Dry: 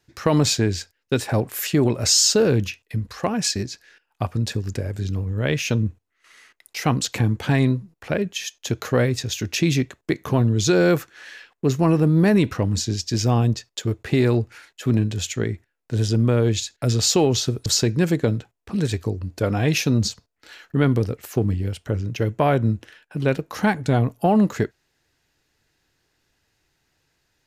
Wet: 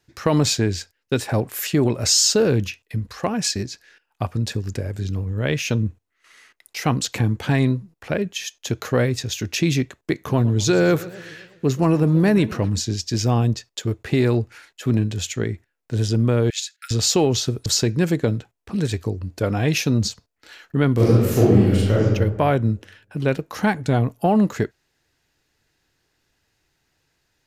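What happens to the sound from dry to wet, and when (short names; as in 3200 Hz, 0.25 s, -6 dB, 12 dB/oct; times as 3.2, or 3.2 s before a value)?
10.22–12.7 warbling echo 0.125 s, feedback 57%, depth 210 cents, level -18 dB
16.5–16.91 steep high-pass 1300 Hz 96 dB/oct
20.94–22.05 reverb throw, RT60 1.2 s, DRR -9.5 dB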